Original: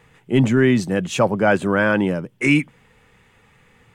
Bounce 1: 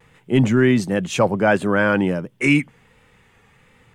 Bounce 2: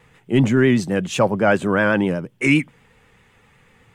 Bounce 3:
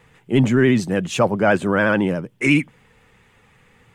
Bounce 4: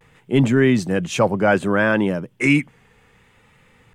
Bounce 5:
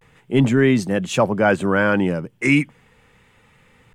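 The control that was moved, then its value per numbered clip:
pitch vibrato, speed: 1.4, 7.9, 14, 0.63, 0.35 Hertz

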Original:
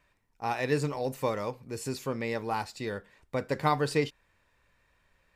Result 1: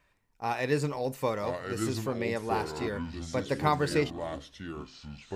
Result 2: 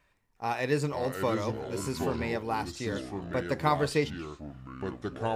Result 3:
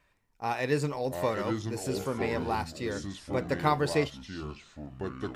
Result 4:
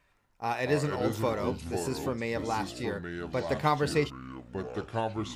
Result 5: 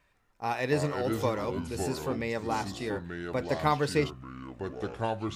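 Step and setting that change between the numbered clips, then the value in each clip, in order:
delay with pitch and tempo change per echo, delay time: 857, 361, 546, 84, 144 milliseconds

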